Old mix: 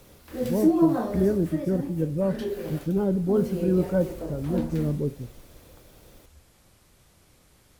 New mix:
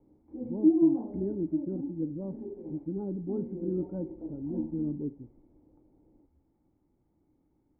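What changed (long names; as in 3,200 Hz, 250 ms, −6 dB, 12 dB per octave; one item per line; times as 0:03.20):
speech: add flat-topped bell 1,600 Hz +10.5 dB 1 octave
master: add formant resonators in series u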